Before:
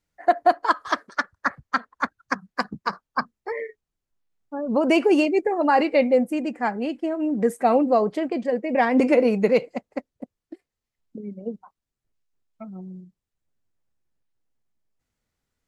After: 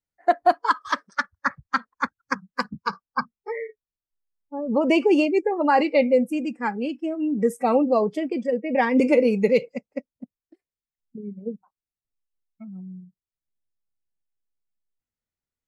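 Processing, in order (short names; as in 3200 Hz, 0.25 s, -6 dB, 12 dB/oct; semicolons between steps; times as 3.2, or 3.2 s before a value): spectral noise reduction 14 dB; 3.04–5.35 air absorption 50 m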